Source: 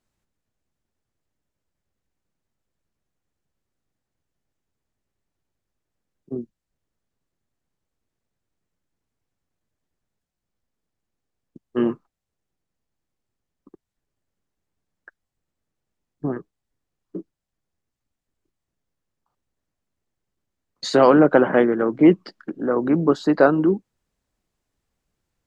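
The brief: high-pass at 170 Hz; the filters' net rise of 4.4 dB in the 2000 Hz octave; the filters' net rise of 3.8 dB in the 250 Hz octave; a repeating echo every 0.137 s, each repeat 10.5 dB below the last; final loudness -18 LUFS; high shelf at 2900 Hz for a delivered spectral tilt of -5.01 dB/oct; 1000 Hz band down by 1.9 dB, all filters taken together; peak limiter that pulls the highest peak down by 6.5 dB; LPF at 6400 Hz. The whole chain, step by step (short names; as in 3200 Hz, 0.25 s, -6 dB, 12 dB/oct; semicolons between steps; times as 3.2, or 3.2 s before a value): HPF 170 Hz; LPF 6400 Hz; bell 250 Hz +6 dB; bell 1000 Hz -6 dB; bell 2000 Hz +7.5 dB; high shelf 2900 Hz +5 dB; limiter -6 dBFS; feedback echo 0.137 s, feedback 30%, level -10.5 dB; gain +0.5 dB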